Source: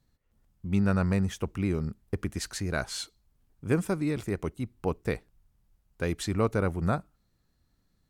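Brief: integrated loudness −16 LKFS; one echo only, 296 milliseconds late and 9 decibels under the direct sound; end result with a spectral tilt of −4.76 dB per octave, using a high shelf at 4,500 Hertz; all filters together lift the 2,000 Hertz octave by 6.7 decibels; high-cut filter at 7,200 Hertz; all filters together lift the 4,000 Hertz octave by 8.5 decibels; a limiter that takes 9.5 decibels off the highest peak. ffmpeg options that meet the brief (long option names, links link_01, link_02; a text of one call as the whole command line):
ffmpeg -i in.wav -af "lowpass=7200,equalizer=frequency=2000:width_type=o:gain=7,equalizer=frequency=4000:width_type=o:gain=5.5,highshelf=frequency=4500:gain=6,alimiter=limit=-20.5dB:level=0:latency=1,aecho=1:1:296:0.355,volume=16dB" out.wav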